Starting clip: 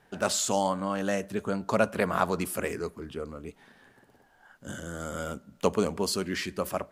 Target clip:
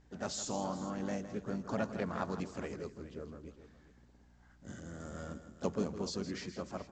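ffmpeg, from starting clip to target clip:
ffmpeg -i in.wav -filter_complex "[0:a]firequalizer=gain_entry='entry(270,0);entry(490,-5);entry(3000,-9);entry(4700,-3)':delay=0.05:min_phase=1,aeval=exprs='val(0)+0.00141*(sin(2*PI*60*n/s)+sin(2*PI*2*60*n/s)/2+sin(2*PI*3*60*n/s)/3+sin(2*PI*4*60*n/s)/4+sin(2*PI*5*60*n/s)/5)':channel_layout=same,asplit=4[link_01][link_02][link_03][link_04];[link_02]asetrate=35002,aresample=44100,atempo=1.25992,volume=-13dB[link_05];[link_03]asetrate=52444,aresample=44100,atempo=0.840896,volume=-16dB[link_06];[link_04]asetrate=55563,aresample=44100,atempo=0.793701,volume=-10dB[link_07];[link_01][link_05][link_06][link_07]amix=inputs=4:normalize=0,aecho=1:1:162|417:0.251|0.168,volume=-7.5dB" -ar 16000 -c:a pcm_mulaw out.wav

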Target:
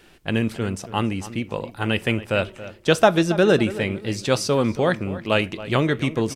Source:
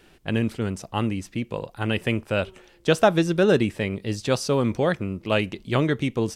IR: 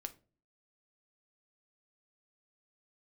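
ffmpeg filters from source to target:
-filter_complex "[0:a]asplit=2[link_01][link_02];[link_02]adelay=277,lowpass=frequency=2400:poles=1,volume=-14.5dB,asplit=2[link_03][link_04];[link_04]adelay=277,lowpass=frequency=2400:poles=1,volume=0.35,asplit=2[link_05][link_06];[link_06]adelay=277,lowpass=frequency=2400:poles=1,volume=0.35[link_07];[link_01][link_03][link_05][link_07]amix=inputs=4:normalize=0,asplit=2[link_08][link_09];[1:a]atrim=start_sample=2205,lowshelf=frequency=430:gain=-10[link_10];[link_09][link_10]afir=irnorm=-1:irlink=0,volume=1dB[link_11];[link_08][link_11]amix=inputs=2:normalize=0,volume=-1dB"

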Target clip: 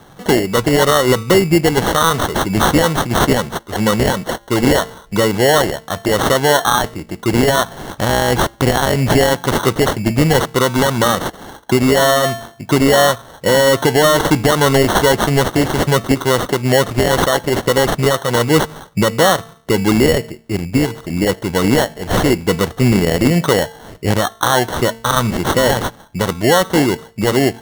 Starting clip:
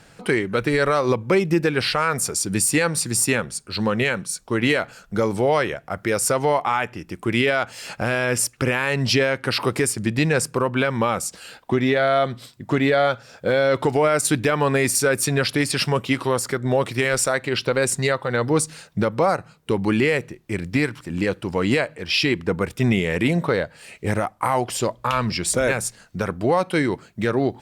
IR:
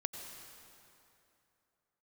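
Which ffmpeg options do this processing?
-filter_complex "[0:a]asettb=1/sr,asplit=3[link_01][link_02][link_03];[link_01]atrim=end=20.164[link_04];[link_02]atrim=start=20.16:end=20.9,asetpts=PTS-STARTPTS,afade=type=in:duration=0.004:curve=qsin,afade=type=out:start_time=0.736:duration=0.004:curve=qsin,equalizer=frequency=3000:width_type=o:width=2.8:gain=-4.5[link_05];[link_03]atrim=start=20.896[link_06];[link_04][link_05]acrossfade=duration=0.004:curve1=hsin:curve2=qsin[link_07];[link_07][link_06]acrossfade=duration=0.004:curve1=qsin:curve2=hsin,bandreject=frequency=227.8:width_type=h:width=4,bandreject=frequency=455.6:width_type=h:width=4,bandreject=frequency=683.4:width_type=h:width=4,bandreject=frequency=911.2:width_type=h:width=4,bandreject=frequency=1139:width_type=h:width=4,bandreject=frequency=1366.8:width_type=h:width=4,bandreject=frequency=1594.6:width_type=h:width=4,bandreject=frequency=1822.4:width_type=h:width=4,bandreject=frequency=2050.2:width_type=h:width=4,bandreject=frequency=2278:width_type=h:width=4,bandreject=frequency=2505.8:width_type=h:width=4,bandreject=frequency=2733.6:width_type=h:width=4,bandreject=frequency=2961.4:width_type=h:width=4,bandreject=frequency=3189.2:width_type=h:width=4,bandreject=frequency=3417:width_type=h:width=4,bandreject=frequency=3644.8:width_type=h:width=4,bandreject=frequency=3872.6:width_type=h:width=4,bandreject=frequency=4100.4:width_type=h:width=4,bandreject=frequency=4328.2:width_type=h:width=4,bandreject=frequency=4556:width_type=h:width=4,bandreject=frequency=4783.8:width_type=h:width=4,bandreject=frequency=5011.6:width_type=h:width=4,bandreject=frequency=5239.4:width_type=h:width=4,bandreject=frequency=5467.2:width_type=h:width=4,bandreject=frequency=5695:width_type=h:width=4,bandreject=frequency=5922.8:width_type=h:width=4,acrusher=samples=18:mix=1:aa=0.000001,volume=7dB"

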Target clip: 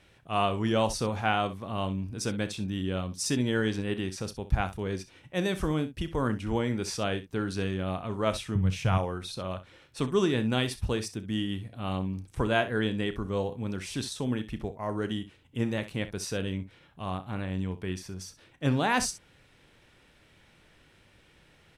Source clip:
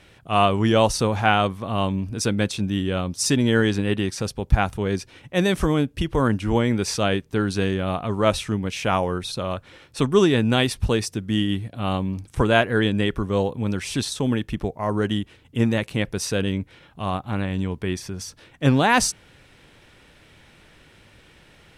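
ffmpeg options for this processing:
ffmpeg -i in.wav -filter_complex "[0:a]asettb=1/sr,asplit=3[link_01][link_02][link_03];[link_01]atrim=end=8.554[link_04];[link_02]atrim=start=8.55:end=8.98,asetpts=PTS-STARTPTS,afade=type=in:duration=0.004:curve=qsin,afade=type=out:start_time=0.426:duration=0.004:curve=qsin,lowshelf=frequency=190:width_type=q:width=1.5:gain=11[link_05];[link_03]atrim=start=8.976[link_06];[link_04][link_05]acrossfade=duration=0.004:curve1=hsin:curve2=qsin[link_07];[link_07][link_06]acrossfade=duration=0.004:curve1=qsin:curve2=hsin,aecho=1:1:32|64:0.188|0.2,volume=-8.5dB" out.wav

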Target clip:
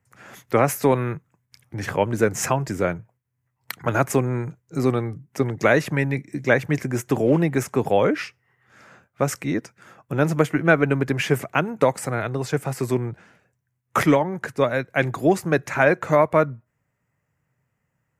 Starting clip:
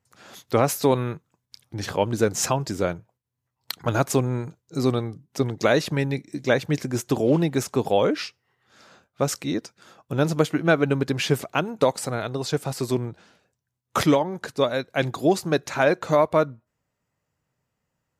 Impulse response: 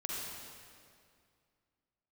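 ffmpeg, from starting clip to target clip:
-filter_complex "[0:a]equalizer=frequency=125:width_type=o:width=1:gain=7,equalizer=frequency=2000:width_type=o:width=1:gain=8,equalizer=frequency=4000:width_type=o:width=1:gain=-11,acrossover=split=170[link_01][link_02];[link_01]asoftclip=type=tanh:threshold=-32dB[link_03];[link_03][link_02]amix=inputs=2:normalize=0,volume=1dB"

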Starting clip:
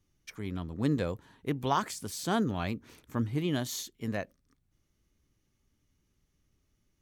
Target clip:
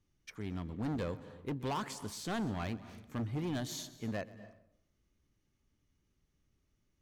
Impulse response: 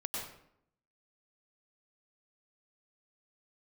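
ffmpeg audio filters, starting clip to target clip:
-filter_complex "[0:a]highshelf=frequency=8700:gain=-9,asoftclip=type=hard:threshold=-29dB,asplit=2[link_01][link_02];[1:a]atrim=start_sample=2205,adelay=128[link_03];[link_02][link_03]afir=irnorm=-1:irlink=0,volume=-17dB[link_04];[link_01][link_04]amix=inputs=2:normalize=0,volume=-3dB"

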